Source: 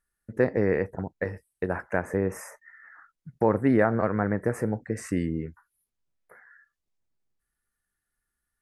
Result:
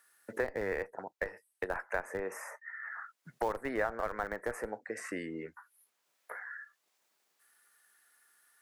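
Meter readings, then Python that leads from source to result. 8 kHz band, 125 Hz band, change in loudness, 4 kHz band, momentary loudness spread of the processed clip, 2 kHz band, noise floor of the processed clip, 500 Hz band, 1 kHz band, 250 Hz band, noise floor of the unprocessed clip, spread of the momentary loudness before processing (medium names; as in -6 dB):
-5.5 dB, -22.0 dB, -11.0 dB, no reading, 11 LU, -3.5 dB, -80 dBFS, -10.0 dB, -6.0 dB, -16.5 dB, -84 dBFS, 12 LU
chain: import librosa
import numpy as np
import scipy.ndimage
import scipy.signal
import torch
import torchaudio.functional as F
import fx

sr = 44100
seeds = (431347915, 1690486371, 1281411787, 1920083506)

p1 = scipy.signal.sosfilt(scipy.signal.butter(2, 630.0, 'highpass', fs=sr, output='sos'), x)
p2 = fx.schmitt(p1, sr, flips_db=-25.0)
p3 = p1 + F.gain(torch.from_numpy(p2), -5.0).numpy()
p4 = fx.band_squash(p3, sr, depth_pct=70)
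y = F.gain(torch.from_numpy(p4), -4.0).numpy()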